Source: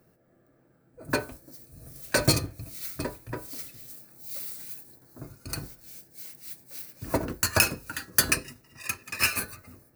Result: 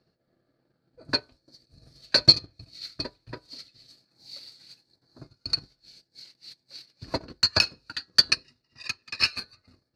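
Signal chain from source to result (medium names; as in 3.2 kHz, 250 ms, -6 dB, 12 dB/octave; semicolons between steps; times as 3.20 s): transient shaper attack +6 dB, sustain -9 dB; resonant low-pass 4.4 kHz, resonance Q 10; trim -9 dB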